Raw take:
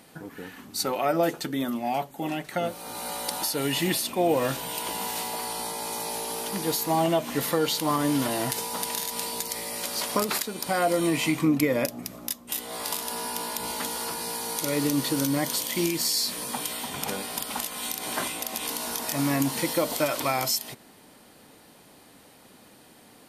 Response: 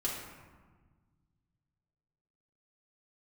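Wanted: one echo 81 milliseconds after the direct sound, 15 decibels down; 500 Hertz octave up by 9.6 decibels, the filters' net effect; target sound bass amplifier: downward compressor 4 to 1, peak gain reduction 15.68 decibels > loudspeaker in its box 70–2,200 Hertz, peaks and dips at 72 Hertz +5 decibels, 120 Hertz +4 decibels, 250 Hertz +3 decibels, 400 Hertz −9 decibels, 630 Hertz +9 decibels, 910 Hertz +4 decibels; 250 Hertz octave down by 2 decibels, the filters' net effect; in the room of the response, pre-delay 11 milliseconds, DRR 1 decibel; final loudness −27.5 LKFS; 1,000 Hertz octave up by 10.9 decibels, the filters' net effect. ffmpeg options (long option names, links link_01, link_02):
-filter_complex "[0:a]equalizer=frequency=250:width_type=o:gain=-5,equalizer=frequency=500:width_type=o:gain=5,equalizer=frequency=1000:width_type=o:gain=7.5,aecho=1:1:81:0.178,asplit=2[link_01][link_02];[1:a]atrim=start_sample=2205,adelay=11[link_03];[link_02][link_03]afir=irnorm=-1:irlink=0,volume=-5dB[link_04];[link_01][link_04]amix=inputs=2:normalize=0,acompressor=threshold=-30dB:ratio=4,highpass=frequency=70:width=0.5412,highpass=frequency=70:width=1.3066,equalizer=frequency=72:width_type=q:width=4:gain=5,equalizer=frequency=120:width_type=q:width=4:gain=4,equalizer=frequency=250:width_type=q:width=4:gain=3,equalizer=frequency=400:width_type=q:width=4:gain=-9,equalizer=frequency=630:width_type=q:width=4:gain=9,equalizer=frequency=910:width_type=q:width=4:gain=4,lowpass=frequency=2200:width=0.5412,lowpass=frequency=2200:width=1.3066,volume=2.5dB"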